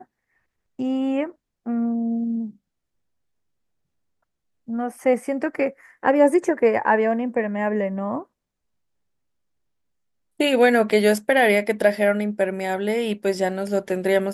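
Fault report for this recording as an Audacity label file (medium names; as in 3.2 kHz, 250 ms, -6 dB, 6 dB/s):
10.900000	10.910000	dropout 5.1 ms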